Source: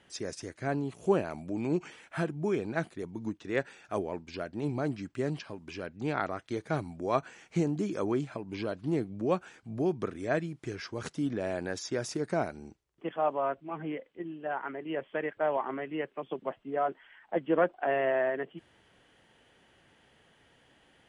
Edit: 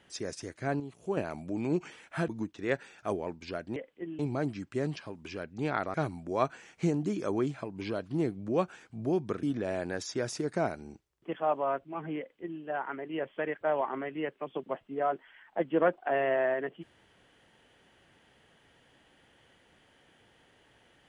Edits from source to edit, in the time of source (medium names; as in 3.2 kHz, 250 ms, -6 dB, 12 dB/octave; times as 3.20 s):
0.80–1.17 s: gain -7.5 dB
2.28–3.14 s: delete
6.37–6.67 s: delete
10.16–11.19 s: delete
13.94–14.37 s: copy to 4.62 s